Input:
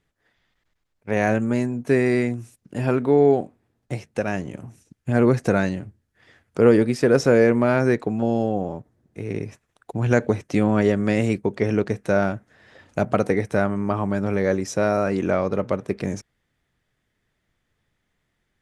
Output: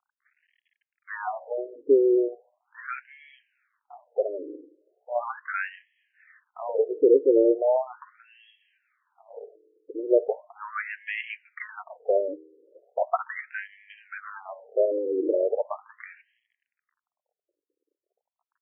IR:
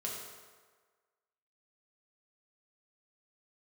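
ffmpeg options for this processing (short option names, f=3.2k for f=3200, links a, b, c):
-filter_complex "[0:a]lowshelf=f=180:g=5.5,bandreject=f=63.22:t=h:w=4,bandreject=f=126.44:t=h:w=4,bandreject=f=189.66:t=h:w=4,bandreject=f=252.88:t=h:w=4,bandreject=f=316.1:t=h:w=4,flanger=delay=3.9:depth=4.9:regen=-42:speed=0.16:shape=sinusoidal,acrusher=bits=10:mix=0:aa=0.000001,asplit=2[a][b];[1:a]atrim=start_sample=2205[c];[b][c]afir=irnorm=-1:irlink=0,volume=-23.5dB[d];[a][d]amix=inputs=2:normalize=0,afftfilt=real='re*between(b*sr/1024,380*pow(2400/380,0.5+0.5*sin(2*PI*0.38*pts/sr))/1.41,380*pow(2400/380,0.5+0.5*sin(2*PI*0.38*pts/sr))*1.41)':imag='im*between(b*sr/1024,380*pow(2400/380,0.5+0.5*sin(2*PI*0.38*pts/sr))/1.41,380*pow(2400/380,0.5+0.5*sin(2*PI*0.38*pts/sr))*1.41)':win_size=1024:overlap=0.75,volume=3.5dB"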